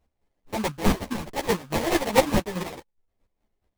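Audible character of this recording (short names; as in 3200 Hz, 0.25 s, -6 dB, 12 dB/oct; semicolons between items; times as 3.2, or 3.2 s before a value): chopped level 4.7 Hz, depth 60%, duty 30%; aliases and images of a low sample rate 1400 Hz, jitter 20%; a shimmering, thickened sound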